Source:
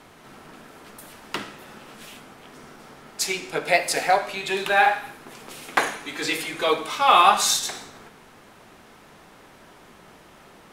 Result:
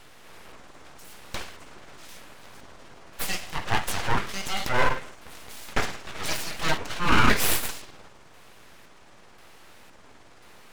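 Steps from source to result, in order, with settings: pitch shift switched off and on -8 st, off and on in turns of 521 ms; full-wave rectifier; transient shaper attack -5 dB, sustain -1 dB; trim +1.5 dB

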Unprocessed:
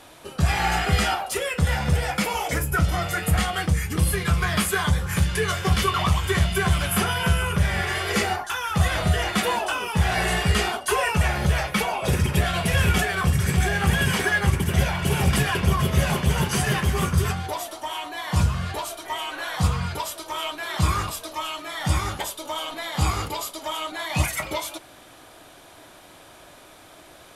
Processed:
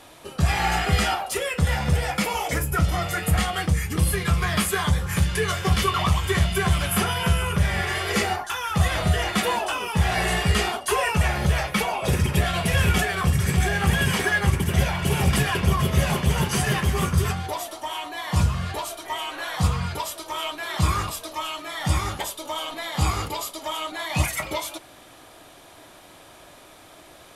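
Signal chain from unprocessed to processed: band-stop 1.5 kHz, Q 22

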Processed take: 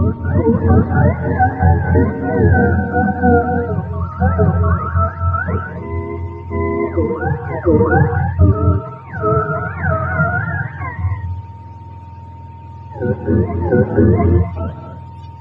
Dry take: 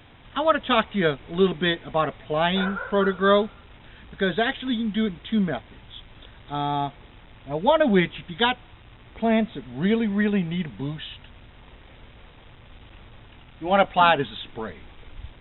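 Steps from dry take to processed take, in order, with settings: spectrum inverted on a logarithmic axis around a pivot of 540 Hz; low-pass 1.9 kHz 12 dB/octave; reverse echo 701 ms -7.5 dB; whistle 920 Hz -44 dBFS; bass shelf 190 Hz +7 dB; gated-style reverb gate 300 ms rising, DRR 7 dB; loudness maximiser +7 dB; trim -1 dB

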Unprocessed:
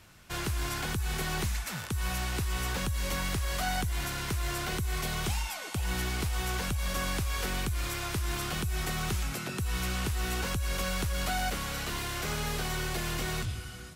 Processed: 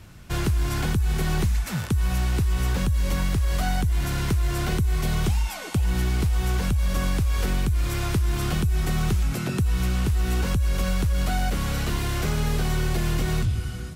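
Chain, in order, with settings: bass shelf 370 Hz +11.5 dB; compression, threshold -22 dBFS, peak gain reduction 5.5 dB; trim +3 dB

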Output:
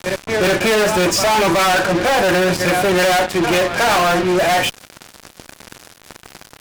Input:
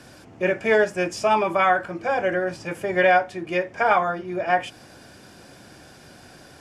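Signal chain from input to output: reverse echo 372 ms -18 dB; fuzz box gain 37 dB, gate -41 dBFS

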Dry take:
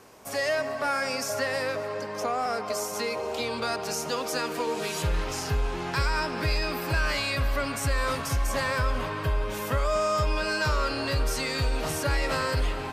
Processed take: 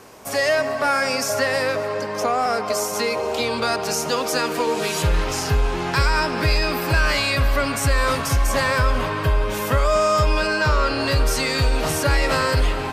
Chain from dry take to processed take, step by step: 10.46–10.99 s: treble shelf 4 kHz -> 8.1 kHz -9 dB; trim +7.5 dB

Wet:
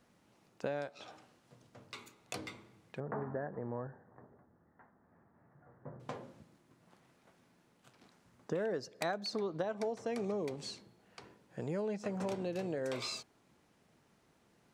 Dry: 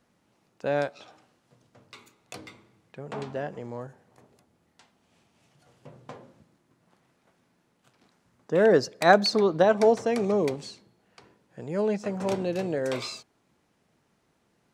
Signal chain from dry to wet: compression 8:1, threshold -34 dBFS, peak gain reduction 21.5 dB; 3.00–6.00 s: Chebyshev low-pass 1.8 kHz, order 5

